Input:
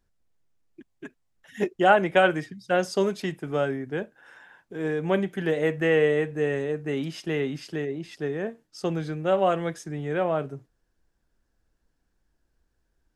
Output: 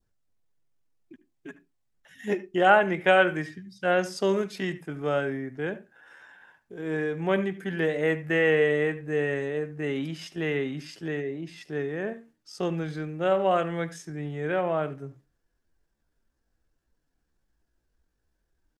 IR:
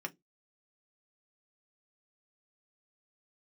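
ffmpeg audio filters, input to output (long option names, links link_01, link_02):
-filter_complex "[0:a]atempo=0.7,asplit=2[link_01][link_02];[1:a]atrim=start_sample=2205,adelay=75[link_03];[link_02][link_03]afir=irnorm=-1:irlink=0,volume=-17dB[link_04];[link_01][link_04]amix=inputs=2:normalize=0,adynamicequalizer=threshold=0.00794:dfrequency=1900:dqfactor=1.3:tfrequency=1900:tqfactor=1.3:attack=5:release=100:ratio=0.375:range=2:mode=boostabove:tftype=bell,volume=-2dB"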